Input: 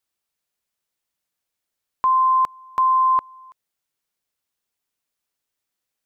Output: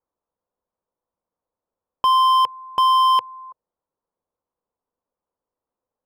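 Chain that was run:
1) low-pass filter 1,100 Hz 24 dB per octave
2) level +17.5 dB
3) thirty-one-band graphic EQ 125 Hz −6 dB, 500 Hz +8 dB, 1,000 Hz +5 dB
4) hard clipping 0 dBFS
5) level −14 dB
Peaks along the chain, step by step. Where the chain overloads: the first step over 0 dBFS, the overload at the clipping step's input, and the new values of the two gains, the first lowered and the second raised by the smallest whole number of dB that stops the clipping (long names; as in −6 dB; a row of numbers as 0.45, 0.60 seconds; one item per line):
−15.5, +2.0, +7.0, 0.0, −14.0 dBFS
step 2, 7.0 dB
step 2 +10.5 dB, step 5 −7 dB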